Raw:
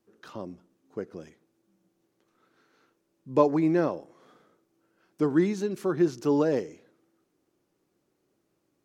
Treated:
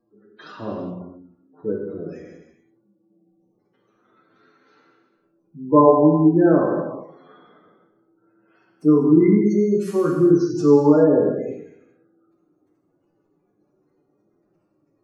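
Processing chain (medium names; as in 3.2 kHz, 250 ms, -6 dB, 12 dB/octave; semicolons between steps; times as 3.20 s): time stretch by phase-locked vocoder 1.7×; spectral gate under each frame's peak -20 dB strong; gated-style reverb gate 450 ms falling, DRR -2.5 dB; trim +5 dB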